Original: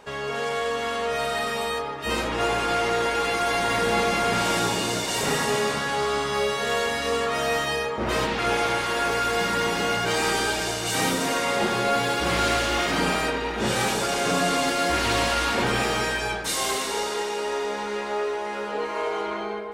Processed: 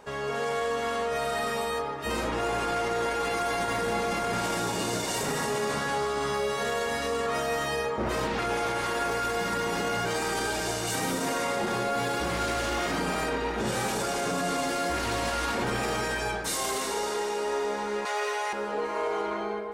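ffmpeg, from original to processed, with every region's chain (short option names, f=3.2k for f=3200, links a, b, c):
-filter_complex "[0:a]asettb=1/sr,asplit=3[a][b][c];[a]atrim=end=18.054[d];[b]atrim=start=18.05:end=18.53,asetpts=PTS-STARTPTS,afade=t=in:d=0.004:c=qsin,afade=t=out:st=0.476:d=0.004:c=qsin,highpass=480,tiltshelf=f=680:g=-8.5,aecho=1:1:6.9:0.57,atrim=end_sample=21168[e];[c]atrim=start=18.526[f];[d][e]acrossfade=d=0.004:c1=hsin:c2=qsin[g];[g][f]acrossfade=d=0.004:c1=qsin:c2=hsin,equalizer=f=3.1k:w=0.95:g=-5,alimiter=limit=-19.5dB:level=0:latency=1:release=24,volume=-1dB"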